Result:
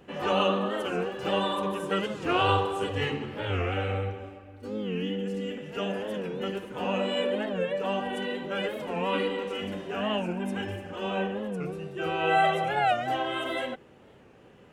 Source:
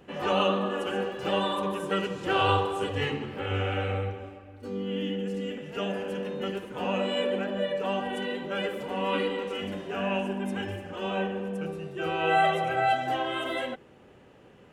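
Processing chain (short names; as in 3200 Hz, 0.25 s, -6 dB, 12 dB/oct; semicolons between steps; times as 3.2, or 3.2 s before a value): record warp 45 rpm, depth 160 cents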